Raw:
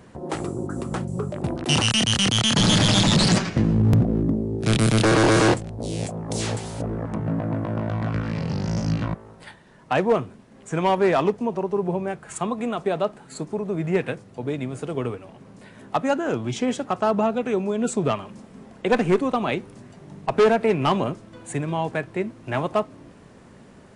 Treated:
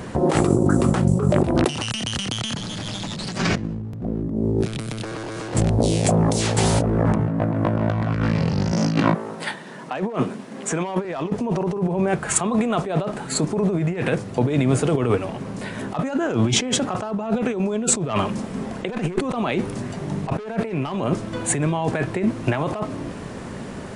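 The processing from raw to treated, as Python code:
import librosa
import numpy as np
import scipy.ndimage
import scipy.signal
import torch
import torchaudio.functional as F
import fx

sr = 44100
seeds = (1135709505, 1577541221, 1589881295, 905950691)

y = fx.highpass(x, sr, hz=160.0, slope=24, at=(8.72, 11.05))
y = fx.over_compress(y, sr, threshold_db=-31.0, ratio=-1.0)
y = y * 10.0 ** (8.0 / 20.0)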